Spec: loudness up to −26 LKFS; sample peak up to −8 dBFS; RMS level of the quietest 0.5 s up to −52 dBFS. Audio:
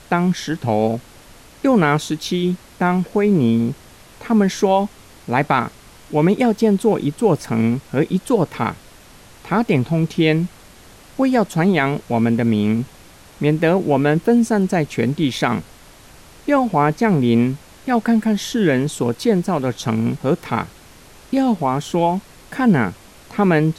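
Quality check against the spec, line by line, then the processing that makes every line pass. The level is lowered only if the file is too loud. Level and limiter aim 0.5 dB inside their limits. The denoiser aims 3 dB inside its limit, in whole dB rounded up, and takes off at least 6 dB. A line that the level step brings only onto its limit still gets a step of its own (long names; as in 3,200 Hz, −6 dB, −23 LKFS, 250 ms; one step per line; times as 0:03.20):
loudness −18.5 LKFS: out of spec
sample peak −4.0 dBFS: out of spec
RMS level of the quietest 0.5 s −44 dBFS: out of spec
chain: broadband denoise 6 dB, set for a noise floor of −44 dBFS
level −8 dB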